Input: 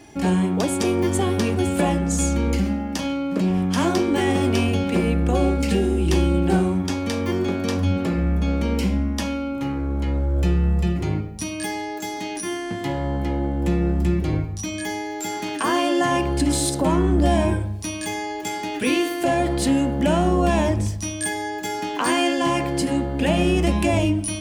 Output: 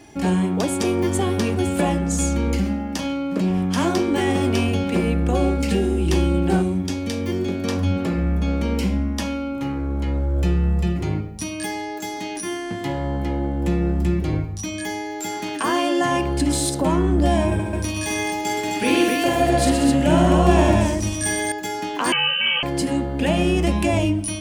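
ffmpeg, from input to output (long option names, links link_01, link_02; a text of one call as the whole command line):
ffmpeg -i in.wav -filter_complex "[0:a]asettb=1/sr,asplit=3[link_01][link_02][link_03];[link_01]atrim=end=6.624[link_04];[link_02]atrim=start=6.62:end=7.64,asetpts=PTS-STARTPTS,afade=type=in:duration=0.004:curve=qsin,afade=type=out:start_time=1.016:duration=0.004:curve=qsin,equalizer=frequency=1100:width_type=o:width=1.4:gain=-8[link_05];[link_03]atrim=start=7.636[link_06];[link_04][link_05]acrossfade=duration=0.004:curve1=hsin:curve2=qsin[link_07];[link_07][link_06]acrossfade=duration=0.004:curve1=qsin:curve2=hsin,asettb=1/sr,asplit=3[link_08][link_09][link_10];[link_08]atrim=end=17.474[link_11];[link_09]atrim=start=17.47:end=21.52,asetpts=PTS-STARTPTS,afade=type=in:duration=0.004:curve=qsin,afade=type=out:start_time=4.046:duration=0.004:curve=qsin,aecho=1:1:46|122|188|260:0.631|0.531|0.398|0.668,atrim=end_sample=178605[link_12];[link_10]atrim=start=21.516[link_13];[link_11][link_12]acrossfade=duration=0.004:curve1=hsin:curve2=qsin[link_14];[link_14][link_13]acrossfade=duration=0.004:curve1=qsin:curve2=hsin,asettb=1/sr,asplit=3[link_15][link_16][link_17];[link_15]atrim=end=22.124[link_18];[link_16]atrim=start=22.12:end=22.63,asetpts=PTS-STARTPTS,afade=type=in:duration=0.004:curve=qsin,afade=type=out:start_time=0.506:duration=0.004:curve=qsin,lowpass=frequency=2800:width_type=q:width=0.5098,lowpass=frequency=2800:width_type=q:width=0.6013,lowpass=frequency=2800:width_type=q:width=0.9,lowpass=frequency=2800:width_type=q:width=2.563,afreqshift=-3300[link_19];[link_17]atrim=start=22.626[link_20];[link_18][link_19]acrossfade=duration=0.004:curve1=hsin:curve2=qsin[link_21];[link_21][link_20]acrossfade=duration=0.004:curve1=qsin:curve2=hsin" out.wav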